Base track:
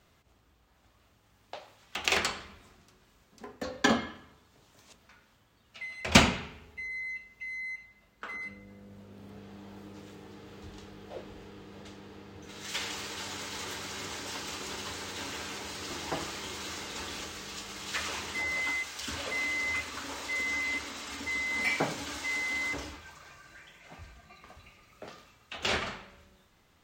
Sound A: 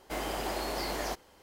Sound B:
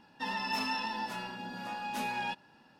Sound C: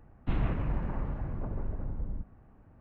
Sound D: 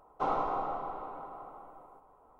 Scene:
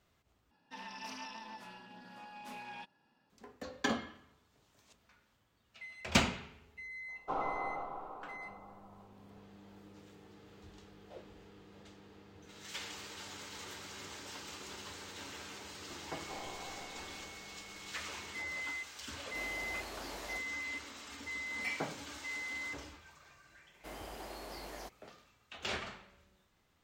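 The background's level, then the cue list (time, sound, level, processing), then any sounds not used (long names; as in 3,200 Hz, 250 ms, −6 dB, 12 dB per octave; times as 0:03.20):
base track −8.5 dB
0:00.51: overwrite with B −12 dB + highs frequency-modulated by the lows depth 0.18 ms
0:07.08: mix in D −5.5 dB
0:16.09: mix in D −14 dB + switching amplifier with a slow clock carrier 2,200 Hz
0:19.24: mix in A −12.5 dB
0:23.74: mix in A −12.5 dB
not used: C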